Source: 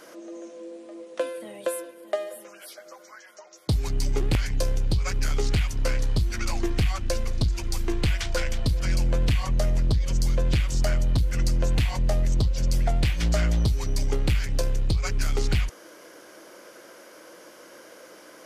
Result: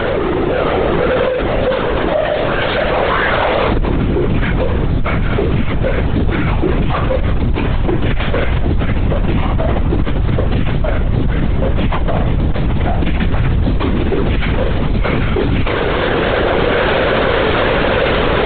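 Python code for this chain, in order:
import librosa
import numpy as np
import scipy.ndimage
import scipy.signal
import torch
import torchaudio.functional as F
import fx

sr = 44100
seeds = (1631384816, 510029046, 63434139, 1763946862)

y = fx.delta_mod(x, sr, bps=32000, step_db=-29.0)
y = fx.recorder_agc(y, sr, target_db=-17.5, rise_db_per_s=11.0, max_gain_db=30)
y = fx.highpass(y, sr, hz=120.0, slope=6)
y = fx.low_shelf(y, sr, hz=300.0, db=7.0)
y = fx.room_early_taps(y, sr, ms=(40, 74), db=(-3.5, -8.5))
y = fx.fold_sine(y, sr, drive_db=13, ceiling_db=-4.0)
y = fx.high_shelf(y, sr, hz=2400.0, db=fx.steps((0.0, -11.5), (13.3, -6.5)))
y = fx.lpc_vocoder(y, sr, seeds[0], excitation='whisper', order=16)
y = fx.env_flatten(y, sr, amount_pct=70)
y = F.gain(torch.from_numpy(y), -8.0).numpy()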